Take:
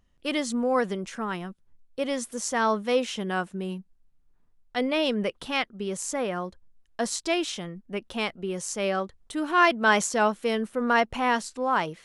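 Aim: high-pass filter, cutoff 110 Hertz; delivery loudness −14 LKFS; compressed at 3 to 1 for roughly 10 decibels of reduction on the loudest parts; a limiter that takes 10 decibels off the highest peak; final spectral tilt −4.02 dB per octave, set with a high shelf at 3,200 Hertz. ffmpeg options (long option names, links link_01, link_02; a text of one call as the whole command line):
ffmpeg -i in.wav -af "highpass=110,highshelf=frequency=3200:gain=-4,acompressor=threshold=-30dB:ratio=3,volume=23.5dB,alimiter=limit=-4.5dB:level=0:latency=1" out.wav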